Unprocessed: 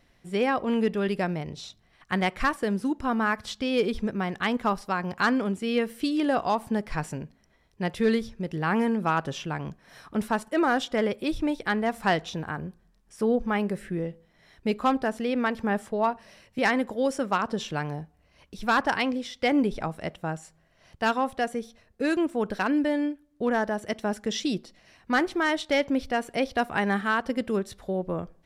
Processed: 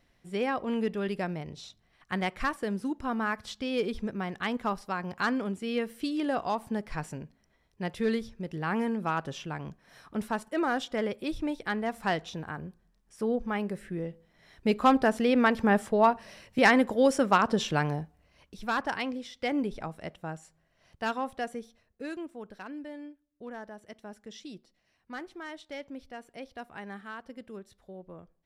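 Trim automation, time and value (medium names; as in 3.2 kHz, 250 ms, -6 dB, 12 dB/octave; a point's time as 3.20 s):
13.90 s -5 dB
15.02 s +3 dB
17.85 s +3 dB
18.68 s -6.5 dB
21.52 s -6.5 dB
22.49 s -16.5 dB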